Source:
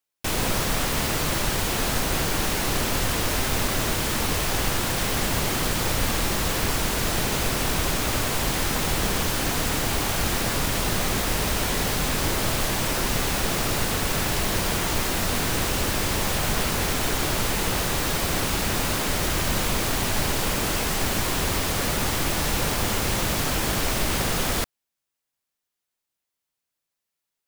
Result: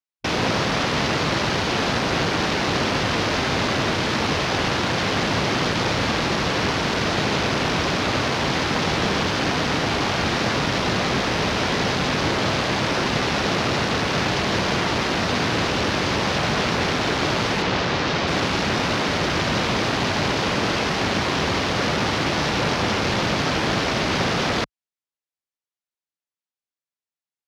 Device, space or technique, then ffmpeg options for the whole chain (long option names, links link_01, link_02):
over-cleaned archive recording: -filter_complex "[0:a]highpass=110,lowpass=7400,afwtdn=0.0224,asettb=1/sr,asplit=3[link_01][link_02][link_03];[link_01]atrim=end=17.624[link_04];[link_02]atrim=start=17.62:end=18.28,asetpts=PTS-STARTPTS,afade=type=in:duration=0.004:curve=qsin,afade=type=out:start_time=0.656:duration=0.004:curve=qsin,lowpass=6200[link_05];[link_03]atrim=start=18.276[link_06];[link_04][link_05]acrossfade=duration=0.004:curve1=hsin:curve2=qsin[link_07];[link_07][link_06]acrossfade=duration=0.004:curve1=qsin:curve2=hsin,volume=5.5dB"